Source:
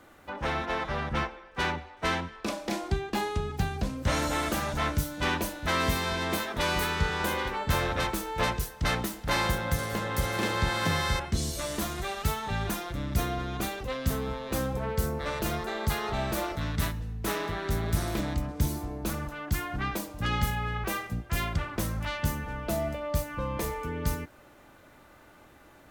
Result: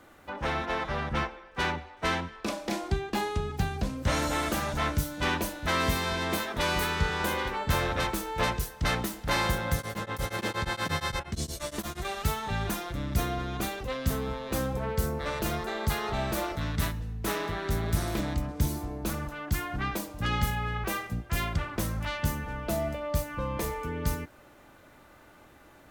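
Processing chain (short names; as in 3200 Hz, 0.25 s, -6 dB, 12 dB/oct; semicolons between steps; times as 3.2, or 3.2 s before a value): 9.77–12.05 beating tremolo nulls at 8.5 Hz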